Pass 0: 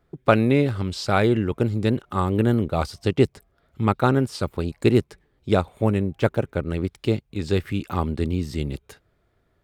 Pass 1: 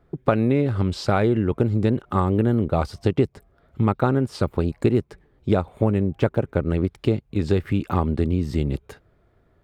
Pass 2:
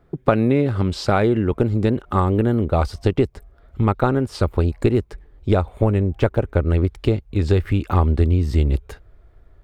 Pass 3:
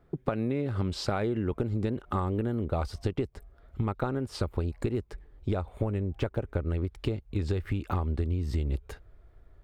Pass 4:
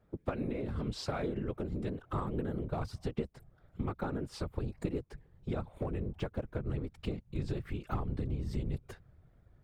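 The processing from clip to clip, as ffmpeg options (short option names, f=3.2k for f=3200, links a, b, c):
-af "highshelf=f=2.3k:g=-10.5,acompressor=threshold=-23dB:ratio=4,volume=6.5dB"
-af "asubboost=boost=8:cutoff=54,volume=3dB"
-af "acompressor=threshold=-20dB:ratio=6,volume=-5.5dB"
-filter_complex "[0:a]afftfilt=real='hypot(re,im)*cos(2*PI*random(0))':imag='hypot(re,im)*sin(2*PI*random(1))':win_size=512:overlap=0.75,acrossover=split=490|1000[a][b][c];[b]aeval=exprs='clip(val(0),-1,0.01)':c=same[d];[a][d][c]amix=inputs=3:normalize=0"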